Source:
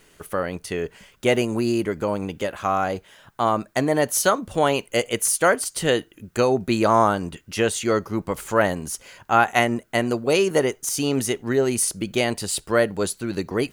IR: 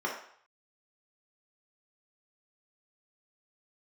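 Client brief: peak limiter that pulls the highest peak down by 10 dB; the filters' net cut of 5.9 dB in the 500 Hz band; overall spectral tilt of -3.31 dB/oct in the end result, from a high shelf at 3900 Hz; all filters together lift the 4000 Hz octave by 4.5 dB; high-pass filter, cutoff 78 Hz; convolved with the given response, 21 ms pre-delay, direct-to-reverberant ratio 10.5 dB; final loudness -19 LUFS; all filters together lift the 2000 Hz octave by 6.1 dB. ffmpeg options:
-filter_complex "[0:a]highpass=78,equalizer=f=500:t=o:g=-8,equalizer=f=2k:t=o:g=8,highshelf=f=3.9k:g=-6,equalizer=f=4k:t=o:g=6.5,alimiter=limit=-10dB:level=0:latency=1,asplit=2[a][b];[1:a]atrim=start_sample=2205,adelay=21[c];[b][c]afir=irnorm=-1:irlink=0,volume=-18.5dB[d];[a][d]amix=inputs=2:normalize=0,volume=5dB"

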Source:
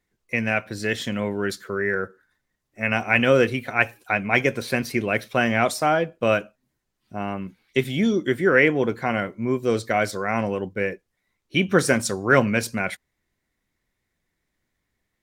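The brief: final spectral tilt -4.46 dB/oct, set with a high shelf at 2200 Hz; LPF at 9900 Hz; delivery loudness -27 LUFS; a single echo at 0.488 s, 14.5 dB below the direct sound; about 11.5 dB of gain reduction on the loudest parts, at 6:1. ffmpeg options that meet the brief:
-af "lowpass=9.9k,highshelf=f=2.2k:g=3.5,acompressor=threshold=-24dB:ratio=6,aecho=1:1:488:0.188,volume=2.5dB"

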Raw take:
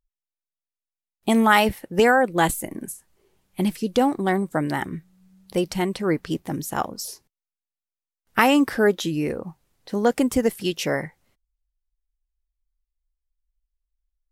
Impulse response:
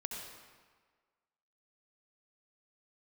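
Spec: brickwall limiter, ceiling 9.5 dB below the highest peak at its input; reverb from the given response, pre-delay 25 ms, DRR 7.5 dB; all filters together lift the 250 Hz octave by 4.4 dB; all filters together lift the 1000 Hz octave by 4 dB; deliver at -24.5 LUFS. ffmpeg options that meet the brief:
-filter_complex "[0:a]equalizer=f=250:t=o:g=5,equalizer=f=1k:t=o:g=5,alimiter=limit=-9dB:level=0:latency=1,asplit=2[a][b];[1:a]atrim=start_sample=2205,adelay=25[c];[b][c]afir=irnorm=-1:irlink=0,volume=-7.5dB[d];[a][d]amix=inputs=2:normalize=0,volume=-4dB"

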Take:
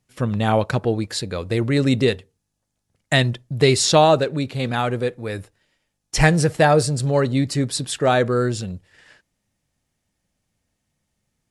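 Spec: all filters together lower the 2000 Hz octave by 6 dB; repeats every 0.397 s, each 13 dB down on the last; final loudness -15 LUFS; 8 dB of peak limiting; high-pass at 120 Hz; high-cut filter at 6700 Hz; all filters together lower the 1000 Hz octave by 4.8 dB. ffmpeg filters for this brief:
-af "highpass=120,lowpass=6.7k,equalizer=f=1k:t=o:g=-6,equalizer=f=2k:t=o:g=-5.5,alimiter=limit=-11dB:level=0:latency=1,aecho=1:1:397|794|1191:0.224|0.0493|0.0108,volume=9dB"

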